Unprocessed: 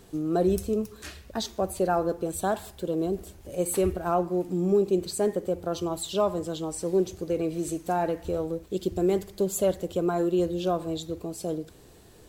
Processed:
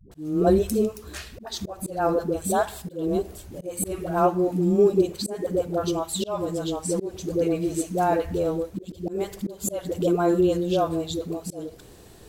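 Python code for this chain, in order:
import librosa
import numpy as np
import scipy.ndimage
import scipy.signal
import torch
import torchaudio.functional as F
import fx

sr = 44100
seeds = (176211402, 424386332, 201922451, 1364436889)

y = fx.dispersion(x, sr, late='highs', ms=116.0, hz=370.0)
y = fx.auto_swell(y, sr, attack_ms=245.0)
y = y * 10.0 ** (4.5 / 20.0)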